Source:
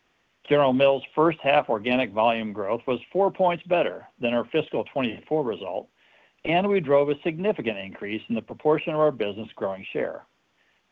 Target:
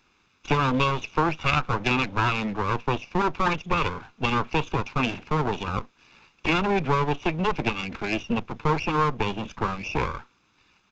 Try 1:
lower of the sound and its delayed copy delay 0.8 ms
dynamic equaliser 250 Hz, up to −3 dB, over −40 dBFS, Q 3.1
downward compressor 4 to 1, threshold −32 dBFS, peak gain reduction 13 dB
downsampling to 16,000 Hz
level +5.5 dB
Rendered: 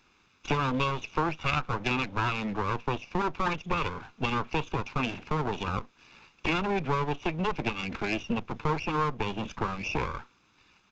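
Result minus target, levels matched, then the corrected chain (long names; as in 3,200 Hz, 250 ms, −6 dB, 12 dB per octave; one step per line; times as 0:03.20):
downward compressor: peak gain reduction +5.5 dB
lower of the sound and its delayed copy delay 0.8 ms
dynamic equaliser 250 Hz, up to −3 dB, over −40 dBFS, Q 3.1
downward compressor 4 to 1, threshold −25 dBFS, peak gain reduction 8 dB
downsampling to 16,000 Hz
level +5.5 dB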